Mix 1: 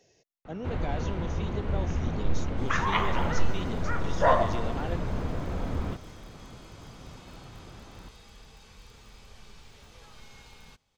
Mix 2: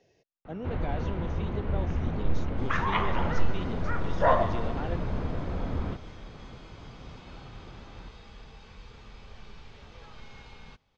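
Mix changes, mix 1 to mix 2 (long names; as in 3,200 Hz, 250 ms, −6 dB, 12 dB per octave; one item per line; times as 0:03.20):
second sound +4.0 dB
master: add high-frequency loss of the air 170 metres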